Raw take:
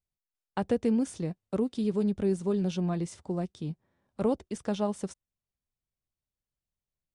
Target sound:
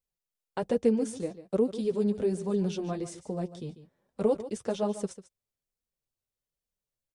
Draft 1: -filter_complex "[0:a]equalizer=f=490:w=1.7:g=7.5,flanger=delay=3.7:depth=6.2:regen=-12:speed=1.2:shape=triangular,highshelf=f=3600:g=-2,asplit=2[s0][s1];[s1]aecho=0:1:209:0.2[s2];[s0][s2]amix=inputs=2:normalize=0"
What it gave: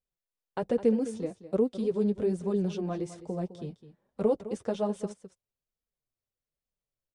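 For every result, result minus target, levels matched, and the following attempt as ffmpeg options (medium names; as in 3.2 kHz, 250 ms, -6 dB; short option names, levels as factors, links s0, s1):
echo 64 ms late; 8 kHz band -6.0 dB
-filter_complex "[0:a]equalizer=f=490:w=1.7:g=7.5,flanger=delay=3.7:depth=6.2:regen=-12:speed=1.2:shape=triangular,highshelf=f=3600:g=-2,asplit=2[s0][s1];[s1]aecho=0:1:145:0.2[s2];[s0][s2]amix=inputs=2:normalize=0"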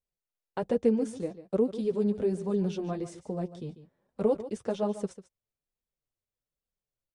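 8 kHz band -6.0 dB
-filter_complex "[0:a]equalizer=f=490:w=1.7:g=7.5,flanger=delay=3.7:depth=6.2:regen=-12:speed=1.2:shape=triangular,highshelf=f=3600:g=5.5,asplit=2[s0][s1];[s1]aecho=0:1:145:0.2[s2];[s0][s2]amix=inputs=2:normalize=0"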